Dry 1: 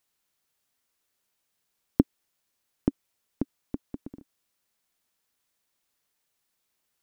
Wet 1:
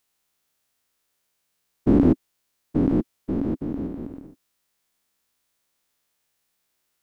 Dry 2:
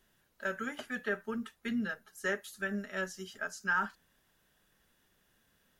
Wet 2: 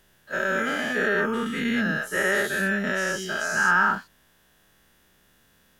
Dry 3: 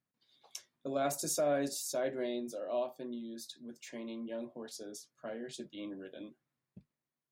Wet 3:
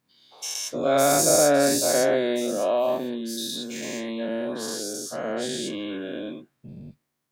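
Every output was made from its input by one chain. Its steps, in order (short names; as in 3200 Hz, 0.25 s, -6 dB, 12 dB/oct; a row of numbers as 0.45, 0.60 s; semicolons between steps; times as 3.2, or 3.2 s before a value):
spectral dilation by 0.24 s; match loudness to -24 LUFS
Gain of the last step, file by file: -2.0, +4.5, +7.5 dB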